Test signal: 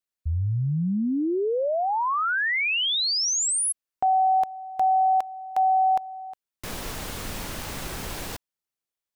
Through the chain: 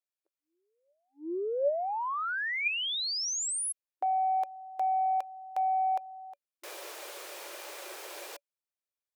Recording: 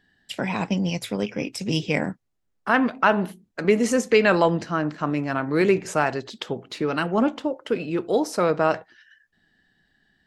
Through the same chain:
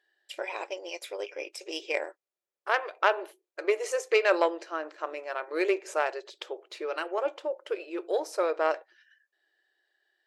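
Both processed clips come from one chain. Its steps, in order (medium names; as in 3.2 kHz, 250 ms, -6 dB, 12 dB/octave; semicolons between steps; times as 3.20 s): Chebyshev shaper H 3 -17 dB, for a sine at -4.5 dBFS; brick-wall FIR high-pass 320 Hz; small resonant body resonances 570/2400 Hz, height 9 dB, ringing for 65 ms; trim -3.5 dB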